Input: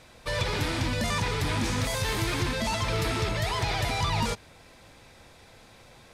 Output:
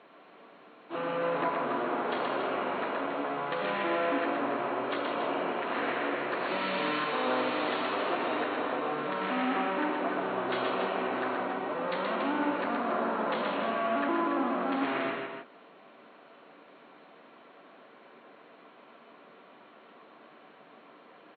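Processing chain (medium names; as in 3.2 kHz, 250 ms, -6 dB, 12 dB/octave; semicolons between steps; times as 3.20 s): high-pass 910 Hz 24 dB/octave; wide varispeed 0.287×; loudspeakers at several distances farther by 43 m -3 dB, 97 m -7 dB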